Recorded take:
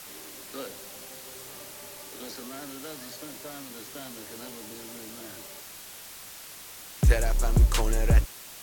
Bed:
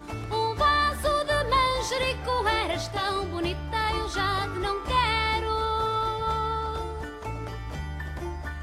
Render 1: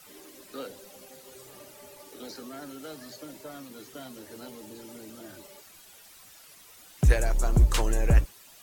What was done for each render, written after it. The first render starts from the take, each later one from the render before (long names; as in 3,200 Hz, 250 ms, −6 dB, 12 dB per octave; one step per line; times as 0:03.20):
broadband denoise 11 dB, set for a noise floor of −45 dBFS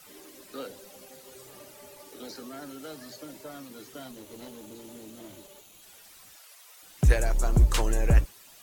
0:04.11–0:05.82: lower of the sound and its delayed copy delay 0.3 ms
0:06.36–0:06.83: inverse Chebyshev high-pass filter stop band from 250 Hz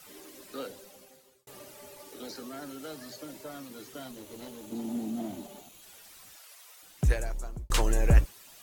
0:00.65–0:01.47: fade out
0:04.72–0:05.69: hollow resonant body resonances 230/710 Hz, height 16 dB, ringing for 35 ms
0:06.64–0:07.70: fade out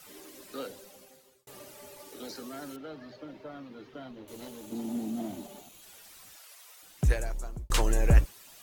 0:02.76–0:04.28: high-frequency loss of the air 290 metres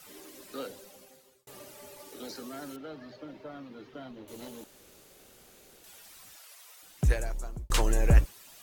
0:04.64–0:05.84: fill with room tone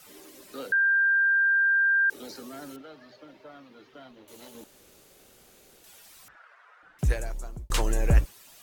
0:00.72–0:02.10: beep over 1,590 Hz −19 dBFS
0:02.82–0:04.55: low-shelf EQ 460 Hz −9 dB
0:06.28–0:06.99: low-pass with resonance 1,500 Hz, resonance Q 4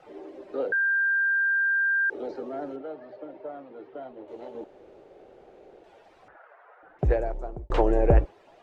low-pass filter 1,900 Hz 12 dB per octave
flat-topped bell 520 Hz +11 dB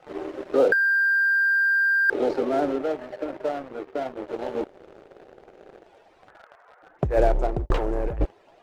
leveller curve on the samples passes 2
compressor whose output falls as the input rises −19 dBFS, ratio −0.5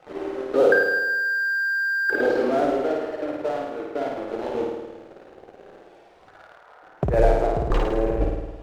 flutter between parallel walls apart 9.2 metres, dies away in 1.1 s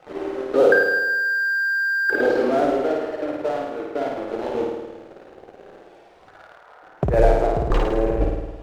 level +2 dB